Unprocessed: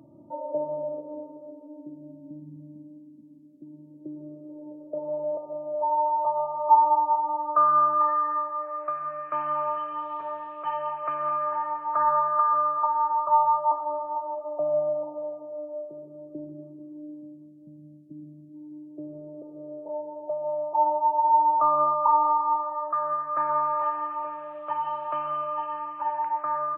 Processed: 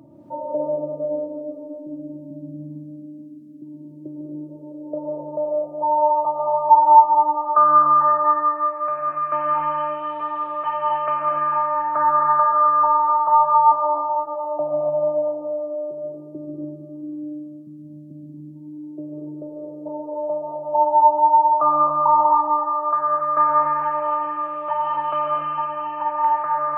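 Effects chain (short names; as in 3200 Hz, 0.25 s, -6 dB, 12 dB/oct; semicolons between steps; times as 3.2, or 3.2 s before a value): non-linear reverb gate 0.31 s rising, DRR -0.5 dB; gain +4.5 dB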